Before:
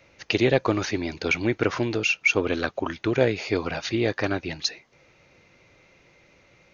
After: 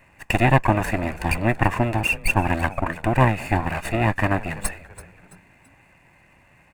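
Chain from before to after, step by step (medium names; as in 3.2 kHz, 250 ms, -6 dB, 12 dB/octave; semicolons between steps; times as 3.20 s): comb filter that takes the minimum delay 1.1 ms; high-order bell 4.5 kHz -15 dB 1.2 oct; on a send: frequency-shifting echo 333 ms, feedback 41%, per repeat -95 Hz, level -17 dB; on the sum: trim +5 dB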